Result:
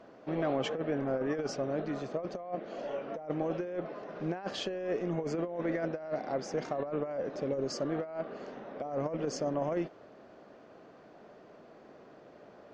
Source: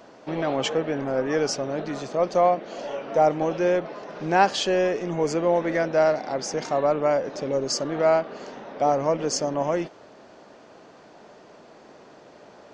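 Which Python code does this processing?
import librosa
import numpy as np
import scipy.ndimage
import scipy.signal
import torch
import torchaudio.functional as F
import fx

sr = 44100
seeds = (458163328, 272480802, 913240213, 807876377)

y = fx.lowpass(x, sr, hz=1700.0, slope=6)
y = fx.peak_eq(y, sr, hz=900.0, db=-6.0, octaves=0.25)
y = fx.over_compress(y, sr, threshold_db=-25.0, ratio=-0.5)
y = y * librosa.db_to_amplitude(-7.0)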